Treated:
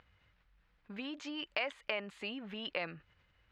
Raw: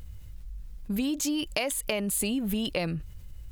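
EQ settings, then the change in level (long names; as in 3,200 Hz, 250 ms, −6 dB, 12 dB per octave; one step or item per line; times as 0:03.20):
resonant band-pass 1,700 Hz, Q 1
high-frequency loss of the air 200 metres
+1.0 dB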